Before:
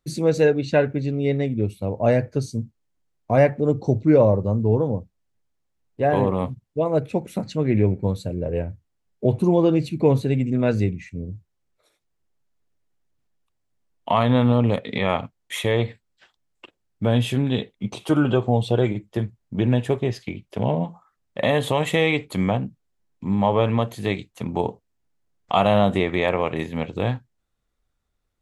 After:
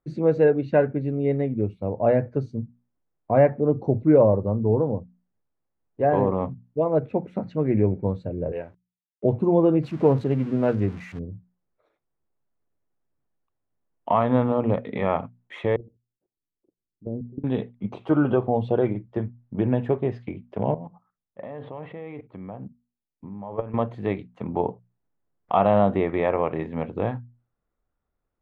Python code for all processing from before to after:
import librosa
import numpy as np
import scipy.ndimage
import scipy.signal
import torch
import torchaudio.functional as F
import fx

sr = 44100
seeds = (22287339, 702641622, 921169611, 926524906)

y = fx.chain(x, sr, fx.tilt_eq(slope=4.5),
    fx.sample_gate(floor_db=-52.0), at=(8.52, 9.24))
y = fx.chain(y, sr, fx.crossing_spikes(level_db=-18.0),
    fx.doppler_dist(depth_ms=0.12), at=(9.83, 11.19))
y = fx.chain(y, sr, fx.level_steps(step_db=19),
    fx.ladder_lowpass(hz=460.0, resonance_pct=35), at=(15.76, 17.44))
y = fx.chain(y, sr, fx.level_steps(step_db=17),
    fx.air_absorb(metres=290.0), at=(20.74, 23.74))
y = scipy.signal.sosfilt(scipy.signal.butter(2, 1400.0, 'lowpass', fs=sr, output='sos'), y)
y = fx.low_shelf(y, sr, hz=130.0, db=-5.5)
y = fx.hum_notches(y, sr, base_hz=60, count=4)